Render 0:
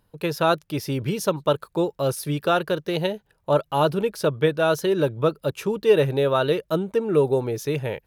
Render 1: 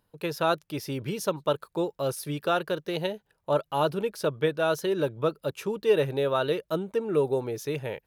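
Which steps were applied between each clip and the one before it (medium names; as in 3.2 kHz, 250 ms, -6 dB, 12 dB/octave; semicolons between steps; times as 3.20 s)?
bass shelf 150 Hz -6 dB; trim -4.5 dB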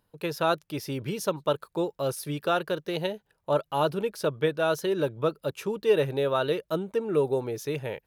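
no audible change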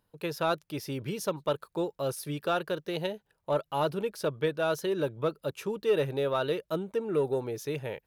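saturation -13 dBFS, distortion -24 dB; trim -2.5 dB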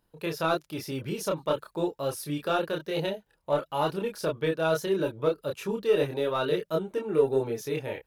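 chorus voices 6, 0.28 Hz, delay 28 ms, depth 3.3 ms; trim +5 dB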